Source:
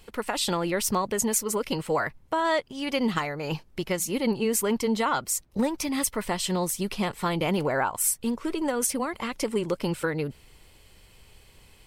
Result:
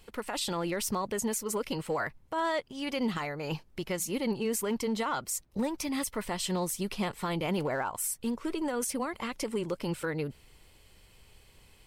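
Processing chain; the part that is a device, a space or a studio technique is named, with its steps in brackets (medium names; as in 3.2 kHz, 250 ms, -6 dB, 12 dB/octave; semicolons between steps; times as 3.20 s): limiter into clipper (peak limiter -18.5 dBFS, peak gain reduction 7 dB; hard clipper -19.5 dBFS, distortion -35 dB); trim -4 dB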